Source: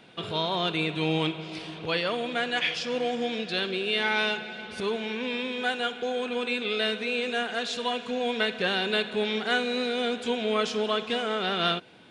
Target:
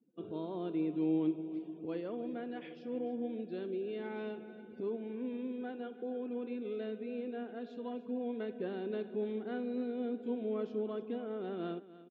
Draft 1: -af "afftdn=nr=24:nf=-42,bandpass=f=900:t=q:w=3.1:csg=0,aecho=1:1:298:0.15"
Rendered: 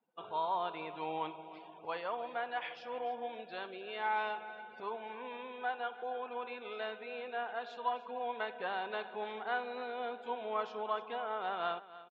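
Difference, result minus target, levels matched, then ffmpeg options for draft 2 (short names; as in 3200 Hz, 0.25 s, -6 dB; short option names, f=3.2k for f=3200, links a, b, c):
250 Hz band -15.5 dB
-af "afftdn=nr=24:nf=-42,bandpass=f=300:t=q:w=3.1:csg=0,aecho=1:1:298:0.15"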